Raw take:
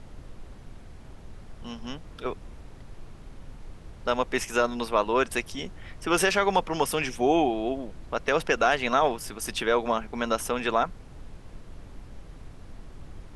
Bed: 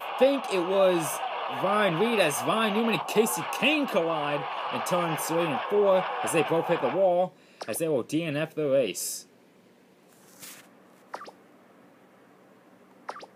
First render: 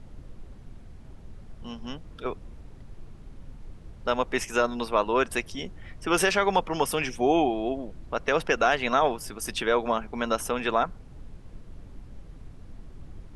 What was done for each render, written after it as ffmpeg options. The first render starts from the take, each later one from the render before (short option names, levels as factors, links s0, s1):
-af "afftdn=nr=6:nf=-46"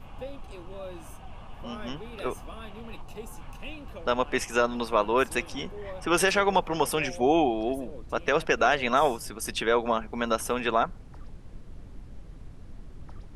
-filter_complex "[1:a]volume=0.119[s0];[0:a][s0]amix=inputs=2:normalize=0"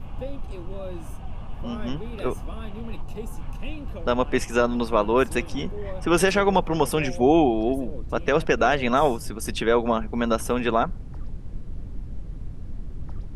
-af "lowshelf=f=380:g=10.5"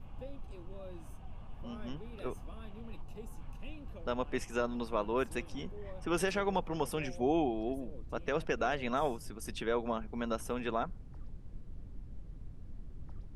-af "volume=0.237"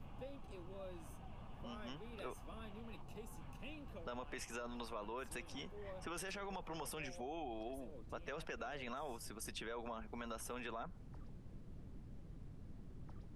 -filter_complex "[0:a]alimiter=level_in=1.88:limit=0.0631:level=0:latency=1:release=11,volume=0.531,acrossover=split=100|620[s0][s1][s2];[s0]acompressor=threshold=0.00224:ratio=4[s3];[s1]acompressor=threshold=0.00251:ratio=4[s4];[s2]acompressor=threshold=0.00562:ratio=4[s5];[s3][s4][s5]amix=inputs=3:normalize=0"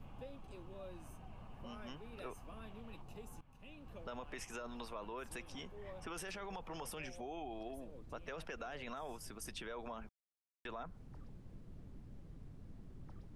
-filter_complex "[0:a]asettb=1/sr,asplit=3[s0][s1][s2];[s0]atrim=end=0.884[s3];[s1]atrim=start=0.88:end=2.67,asetpts=PTS-STARTPTS,afade=t=in:d=0.004:c=qsin,afade=t=out:st=1.786:d=0.004:c=qsin,bandreject=f=3400:w=12[s4];[s2]atrim=start=2.666[s5];[s3][s4]acrossfade=d=0.004:c1=hsin:c2=qsin[s6];[s6][s5]acrossfade=d=0.004:c1=qsin:c2=hsin,asplit=4[s7][s8][s9][s10];[s7]atrim=end=3.41,asetpts=PTS-STARTPTS,afade=t=out:st=3.406:d=0.004:c=hsin:silence=0.133352[s11];[s8]atrim=start=3.41:end=10.09,asetpts=PTS-STARTPTS,afade=t=in:d=0.58:silence=0.133352,afade=t=out:st=6.676:d=0.004:c=hsin[s12];[s9]atrim=start=10.09:end=10.65,asetpts=PTS-STARTPTS,volume=0[s13];[s10]atrim=start=10.65,asetpts=PTS-STARTPTS,afade=t=in:d=0.004:c=hsin[s14];[s11][s12][s13][s14]concat=n=4:v=0:a=1"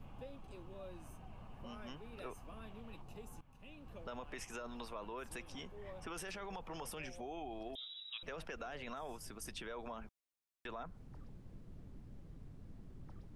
-filter_complex "[0:a]asettb=1/sr,asplit=3[s0][s1][s2];[s0]atrim=end=7.754[s3];[s1]atrim=start=7.75:end=8.23,asetpts=PTS-STARTPTS,afade=t=in:d=0.004:c=qsin,afade=t=out:st=0.476:d=0.004:c=qsin,lowpass=f=3300:t=q:w=0.5098,lowpass=f=3300:t=q:w=0.6013,lowpass=f=3300:t=q:w=0.9,lowpass=f=3300:t=q:w=2.563,afreqshift=-3900[s4];[s2]atrim=start=8.226[s5];[s3][s4]acrossfade=d=0.004:c1=hsin:c2=qsin[s6];[s6][s5]acrossfade=d=0.004:c1=qsin:c2=hsin"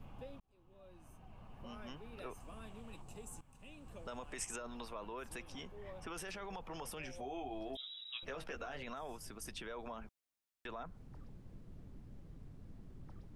-filter_complex "[0:a]asettb=1/sr,asplit=3[s0][s1][s2];[s0]atrim=end=2.404[s3];[s1]atrim=start=2.4:end=4.56,asetpts=PTS-STARTPTS,afade=t=in:d=0.004:c=qsin,afade=t=out:st=2.156:d=0.004:c=qsin,equalizer=f=8100:t=o:w=0.59:g=15[s4];[s2]atrim=start=4.556[s5];[s3][s4]acrossfade=d=0.004:c1=hsin:c2=qsin[s6];[s6][s5]acrossfade=d=0.004:c1=qsin:c2=hsin,asettb=1/sr,asplit=3[s7][s8][s9];[s7]atrim=end=7.084[s10];[s8]atrim=start=7.08:end=8.83,asetpts=PTS-STARTPTS,afade=t=in:d=0.004:c=qsin,afade=t=out:st=1.746:d=0.004:c=qsin,asplit=2[s11][s12];[s12]adelay=15,volume=0.562[s13];[s11][s13]amix=inputs=2:normalize=0,atrim=end_sample=77175[s14];[s9]atrim=start=8.826[s15];[s10][s14]acrossfade=d=0.004:c1=hsin:c2=qsin[s16];[s16][s15]acrossfade=d=0.004:c1=qsin:c2=hsin,asplit=2[s17][s18];[s17]atrim=end=0.4,asetpts=PTS-STARTPTS,afade=t=out:st=0.396:d=0.004:c=hsin[s19];[s18]atrim=start=0.4,asetpts=PTS-STARTPTS,afade=t=in:d=1.35[s20];[s19][s20]concat=n=2:v=0:a=1"